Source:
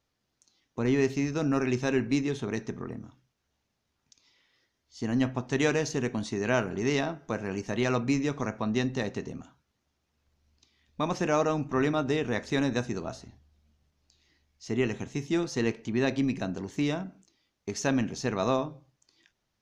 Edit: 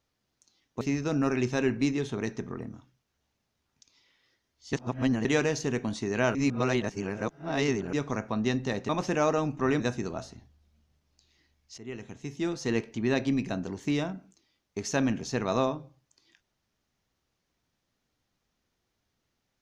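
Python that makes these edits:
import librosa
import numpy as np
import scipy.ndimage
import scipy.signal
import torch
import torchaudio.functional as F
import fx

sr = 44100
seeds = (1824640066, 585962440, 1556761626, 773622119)

y = fx.edit(x, sr, fx.cut(start_s=0.81, length_s=0.3),
    fx.reverse_span(start_s=5.03, length_s=0.52),
    fx.reverse_span(start_s=6.65, length_s=1.58),
    fx.cut(start_s=9.19, length_s=1.82),
    fx.cut(start_s=11.92, length_s=0.79),
    fx.fade_in_from(start_s=14.69, length_s=1.01, floor_db=-17.5), tone=tone)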